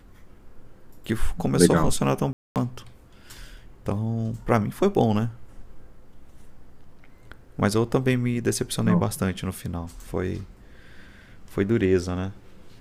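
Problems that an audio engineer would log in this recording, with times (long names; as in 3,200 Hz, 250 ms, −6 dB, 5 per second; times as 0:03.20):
0:02.33–0:02.56: drop-out 228 ms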